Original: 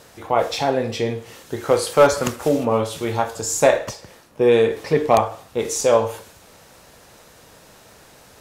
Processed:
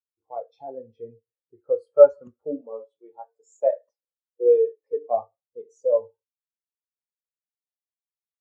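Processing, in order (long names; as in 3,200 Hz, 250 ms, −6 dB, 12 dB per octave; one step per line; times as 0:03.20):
0:02.61–0:05.11: high-pass filter 290 Hz 12 dB per octave
every bin expanded away from the loudest bin 2.5 to 1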